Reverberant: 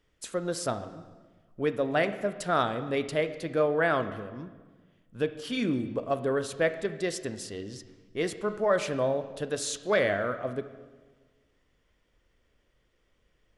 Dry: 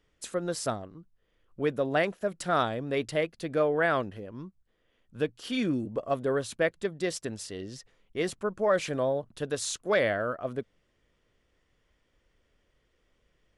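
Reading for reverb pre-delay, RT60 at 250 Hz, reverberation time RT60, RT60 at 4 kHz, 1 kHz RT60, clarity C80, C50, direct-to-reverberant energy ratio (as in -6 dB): 16 ms, 1.6 s, 1.4 s, 1.2 s, 1.3 s, 13.5 dB, 12.0 dB, 10.0 dB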